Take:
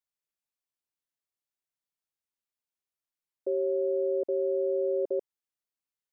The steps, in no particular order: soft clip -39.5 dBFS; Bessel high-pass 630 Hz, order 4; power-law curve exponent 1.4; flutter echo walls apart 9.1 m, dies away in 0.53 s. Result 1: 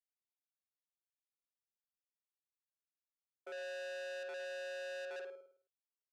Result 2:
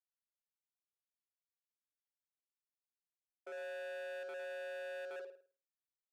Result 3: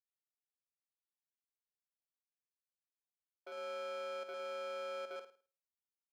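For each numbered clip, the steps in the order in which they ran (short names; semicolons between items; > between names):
power-law curve > flutter echo > soft clip > Bessel high-pass; flutter echo > power-law curve > soft clip > Bessel high-pass; soft clip > flutter echo > power-law curve > Bessel high-pass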